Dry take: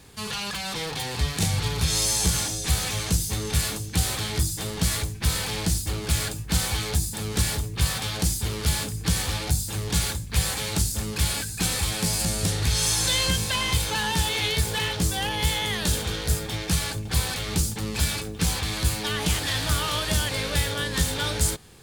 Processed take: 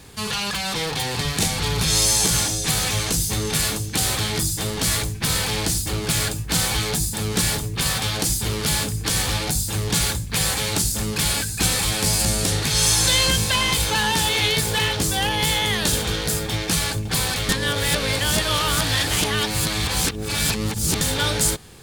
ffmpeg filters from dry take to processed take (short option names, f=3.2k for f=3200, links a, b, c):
-filter_complex "[0:a]asplit=3[a][b][c];[a]atrim=end=17.492[d];[b]atrim=start=17.488:end=21.012,asetpts=PTS-STARTPTS,areverse[e];[c]atrim=start=21.008[f];[d][e]acrossfade=d=0.004:c1=hsin:c2=hsin[g];[g][f]acrossfade=d=0.004:c1=hsin:c2=hsin,afftfilt=real='re*lt(hypot(re,im),0.562)':imag='im*lt(hypot(re,im),0.562)':win_size=1024:overlap=0.75,volume=5.5dB"